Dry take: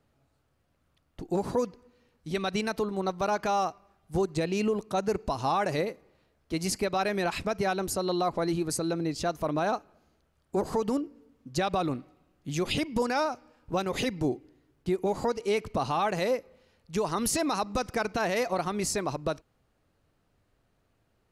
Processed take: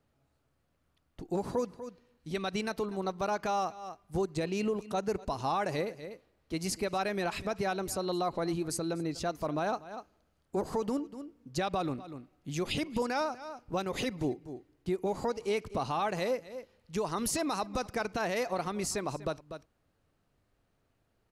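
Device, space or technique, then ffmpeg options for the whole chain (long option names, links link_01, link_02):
ducked delay: -filter_complex "[0:a]asplit=3[link_01][link_02][link_03];[link_02]adelay=244,volume=-8dB[link_04];[link_03]apad=whole_len=950942[link_05];[link_04][link_05]sidechaincompress=threshold=-41dB:ratio=12:attack=49:release=230[link_06];[link_01][link_06]amix=inputs=2:normalize=0,volume=-4dB"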